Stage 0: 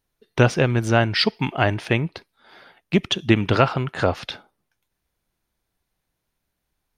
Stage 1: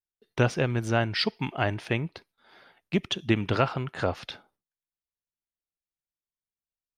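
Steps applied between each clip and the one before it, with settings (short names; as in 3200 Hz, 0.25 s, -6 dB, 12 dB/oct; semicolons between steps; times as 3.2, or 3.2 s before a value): gate with hold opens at -54 dBFS; gain -7 dB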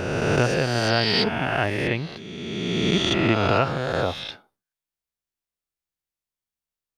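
spectral swells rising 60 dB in 2.24 s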